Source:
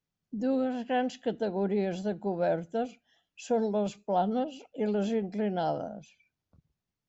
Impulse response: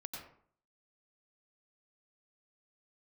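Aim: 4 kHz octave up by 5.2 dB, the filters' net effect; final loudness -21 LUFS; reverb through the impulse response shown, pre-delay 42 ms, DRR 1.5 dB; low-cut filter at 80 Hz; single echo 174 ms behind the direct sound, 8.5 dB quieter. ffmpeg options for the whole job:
-filter_complex "[0:a]highpass=80,equalizer=f=4000:t=o:g=7,aecho=1:1:174:0.376,asplit=2[s0][s1];[1:a]atrim=start_sample=2205,adelay=42[s2];[s1][s2]afir=irnorm=-1:irlink=0,volume=1.12[s3];[s0][s3]amix=inputs=2:normalize=0,volume=2.24"

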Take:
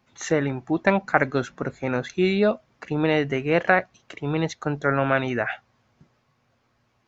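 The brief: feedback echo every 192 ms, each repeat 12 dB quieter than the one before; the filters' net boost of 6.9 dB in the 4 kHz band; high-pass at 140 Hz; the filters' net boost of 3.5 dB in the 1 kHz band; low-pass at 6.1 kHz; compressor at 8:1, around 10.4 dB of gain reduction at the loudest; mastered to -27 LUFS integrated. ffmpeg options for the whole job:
-af "highpass=140,lowpass=6100,equalizer=f=1000:t=o:g=4.5,equalizer=f=4000:t=o:g=9,acompressor=threshold=0.0891:ratio=8,aecho=1:1:192|384|576:0.251|0.0628|0.0157,volume=1.12"

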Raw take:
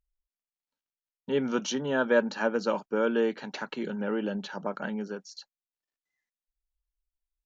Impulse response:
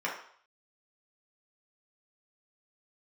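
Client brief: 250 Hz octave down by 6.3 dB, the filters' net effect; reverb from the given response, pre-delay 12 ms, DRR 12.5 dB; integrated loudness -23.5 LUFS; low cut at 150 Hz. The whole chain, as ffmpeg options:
-filter_complex "[0:a]highpass=150,equalizer=f=250:t=o:g=-7,asplit=2[s0][s1];[1:a]atrim=start_sample=2205,adelay=12[s2];[s1][s2]afir=irnorm=-1:irlink=0,volume=0.0944[s3];[s0][s3]amix=inputs=2:normalize=0,volume=2.51"

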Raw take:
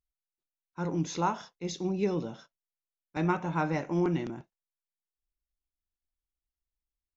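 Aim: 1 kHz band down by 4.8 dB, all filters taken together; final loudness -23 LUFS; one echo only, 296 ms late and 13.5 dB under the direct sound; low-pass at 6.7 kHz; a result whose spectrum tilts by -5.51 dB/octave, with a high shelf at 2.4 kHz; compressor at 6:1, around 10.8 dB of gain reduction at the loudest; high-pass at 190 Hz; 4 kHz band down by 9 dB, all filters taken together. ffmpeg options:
-af "highpass=190,lowpass=6700,equalizer=f=1000:t=o:g=-4.5,highshelf=f=2400:g=-7,equalizer=f=4000:t=o:g=-4,acompressor=threshold=0.0141:ratio=6,aecho=1:1:296:0.211,volume=9.44"

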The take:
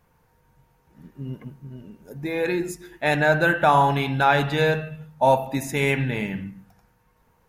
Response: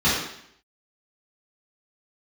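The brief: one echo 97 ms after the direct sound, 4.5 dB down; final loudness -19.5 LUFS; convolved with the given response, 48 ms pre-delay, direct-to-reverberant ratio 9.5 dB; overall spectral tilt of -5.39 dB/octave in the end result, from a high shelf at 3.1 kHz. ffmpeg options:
-filter_complex "[0:a]highshelf=f=3100:g=-5.5,aecho=1:1:97:0.596,asplit=2[s0][s1];[1:a]atrim=start_sample=2205,adelay=48[s2];[s1][s2]afir=irnorm=-1:irlink=0,volume=0.0422[s3];[s0][s3]amix=inputs=2:normalize=0,volume=1.12"

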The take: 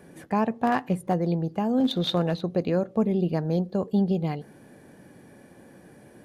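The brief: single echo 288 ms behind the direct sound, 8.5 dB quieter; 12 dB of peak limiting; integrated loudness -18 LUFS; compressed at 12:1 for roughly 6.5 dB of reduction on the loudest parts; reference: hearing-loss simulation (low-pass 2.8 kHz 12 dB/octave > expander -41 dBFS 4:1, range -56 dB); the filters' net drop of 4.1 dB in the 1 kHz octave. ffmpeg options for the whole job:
-af "equalizer=f=1000:t=o:g=-6,acompressor=threshold=0.0562:ratio=12,alimiter=level_in=1.5:limit=0.0631:level=0:latency=1,volume=0.668,lowpass=2800,aecho=1:1:288:0.376,agate=range=0.00158:threshold=0.00891:ratio=4,volume=7.5"

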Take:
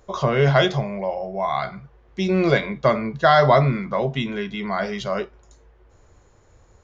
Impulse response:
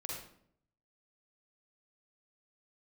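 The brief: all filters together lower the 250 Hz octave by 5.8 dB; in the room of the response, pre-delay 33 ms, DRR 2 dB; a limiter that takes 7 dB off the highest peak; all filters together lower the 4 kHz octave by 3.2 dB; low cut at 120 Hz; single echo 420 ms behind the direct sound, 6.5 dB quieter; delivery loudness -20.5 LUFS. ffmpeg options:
-filter_complex "[0:a]highpass=120,equalizer=f=250:t=o:g=-9,equalizer=f=4000:t=o:g=-4,alimiter=limit=0.266:level=0:latency=1,aecho=1:1:420:0.473,asplit=2[s0][s1];[1:a]atrim=start_sample=2205,adelay=33[s2];[s1][s2]afir=irnorm=-1:irlink=0,volume=0.841[s3];[s0][s3]amix=inputs=2:normalize=0,volume=1.19"

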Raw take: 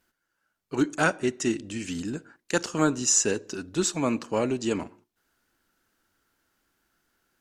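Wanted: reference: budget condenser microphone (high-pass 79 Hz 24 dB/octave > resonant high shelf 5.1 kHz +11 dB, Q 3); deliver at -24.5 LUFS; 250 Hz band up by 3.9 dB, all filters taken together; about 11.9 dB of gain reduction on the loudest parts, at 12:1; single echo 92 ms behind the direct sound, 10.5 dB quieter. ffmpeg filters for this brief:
-af "equalizer=f=250:t=o:g=5,acompressor=threshold=0.0501:ratio=12,highpass=f=79:w=0.5412,highpass=f=79:w=1.3066,highshelf=f=5100:t=q:w=3:g=11,aecho=1:1:92:0.299,volume=0.668"

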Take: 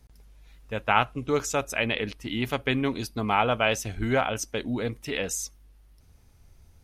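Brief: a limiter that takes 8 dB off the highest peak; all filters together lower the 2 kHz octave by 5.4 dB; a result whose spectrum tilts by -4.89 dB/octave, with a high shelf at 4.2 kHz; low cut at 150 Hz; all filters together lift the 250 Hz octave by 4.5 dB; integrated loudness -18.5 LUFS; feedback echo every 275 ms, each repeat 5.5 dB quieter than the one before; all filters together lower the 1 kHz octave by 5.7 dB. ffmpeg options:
-af "highpass=150,equalizer=f=250:t=o:g=6,equalizer=f=1000:t=o:g=-7,equalizer=f=2000:t=o:g=-3.5,highshelf=f=4200:g=-6.5,alimiter=limit=0.141:level=0:latency=1,aecho=1:1:275|550|825|1100|1375|1650|1925:0.531|0.281|0.149|0.079|0.0419|0.0222|0.0118,volume=3.16"

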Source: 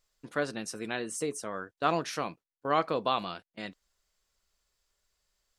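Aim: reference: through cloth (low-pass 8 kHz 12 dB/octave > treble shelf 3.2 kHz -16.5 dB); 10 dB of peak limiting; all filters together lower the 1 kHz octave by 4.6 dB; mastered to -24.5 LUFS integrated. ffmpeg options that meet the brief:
-af "equalizer=f=1000:t=o:g=-4,alimiter=limit=0.0708:level=0:latency=1,lowpass=8000,highshelf=f=3200:g=-16.5,volume=5.62"

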